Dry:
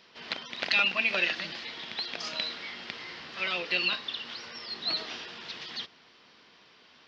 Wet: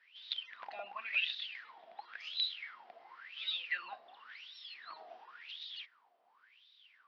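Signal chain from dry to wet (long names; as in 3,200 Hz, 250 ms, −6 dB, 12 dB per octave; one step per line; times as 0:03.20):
LFO wah 0.93 Hz 680–3,800 Hz, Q 15
level +5.5 dB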